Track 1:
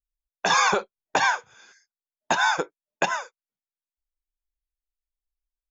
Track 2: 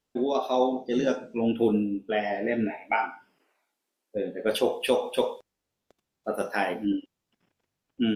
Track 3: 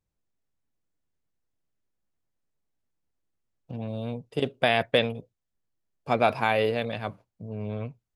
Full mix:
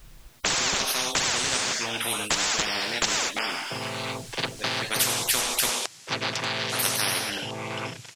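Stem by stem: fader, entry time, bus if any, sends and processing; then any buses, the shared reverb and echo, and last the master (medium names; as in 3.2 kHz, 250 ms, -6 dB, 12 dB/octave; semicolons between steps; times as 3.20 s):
0.0 dB, 0.00 s, no send, treble shelf 5.5 kHz -9 dB; spectrum-flattening compressor 2:1
+0.5 dB, 0.45 s, no send, frequency weighting ITU-R 468
-1.0 dB, 0.00 s, no send, vocoder on a held chord minor triad, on A2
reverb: none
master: spectrum-flattening compressor 10:1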